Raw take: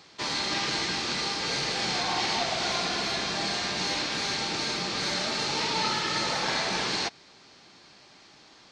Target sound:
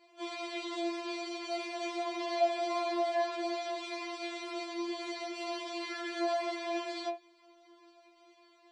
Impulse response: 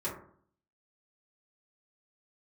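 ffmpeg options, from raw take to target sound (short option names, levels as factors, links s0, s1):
-filter_complex "[1:a]atrim=start_sample=2205,afade=t=out:st=0.21:d=0.01,atrim=end_sample=9702,asetrate=79380,aresample=44100[s0];[0:a][s0]afir=irnorm=-1:irlink=0,afftfilt=real='re*4*eq(mod(b,16),0)':imag='im*4*eq(mod(b,16),0)':win_size=2048:overlap=0.75,volume=0.398"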